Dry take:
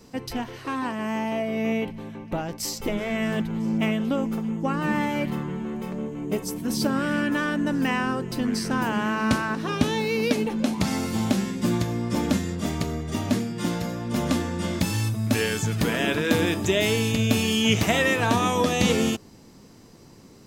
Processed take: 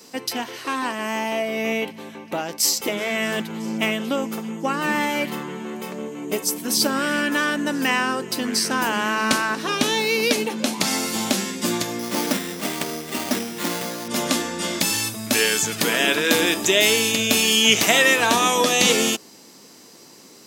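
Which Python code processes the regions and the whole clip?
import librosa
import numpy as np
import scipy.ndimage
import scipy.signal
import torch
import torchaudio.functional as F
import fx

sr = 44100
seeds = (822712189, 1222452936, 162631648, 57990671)

y = fx.chain(x, sr, fx.cvsd(bps=32000),
    fx.highpass(hz=110.0, slope=12),
    fx.resample_bad(factor=8, down='none', up='hold'), at=(11.99, 14.08))
y = scipy.signal.sosfilt(scipy.signal.butter(2, 280.0, 'highpass', fs=sr, output='sos'), y)
y = fx.high_shelf(y, sr, hz=2400.0, db=9.5)
y = y * librosa.db_to_amplitude(3.0)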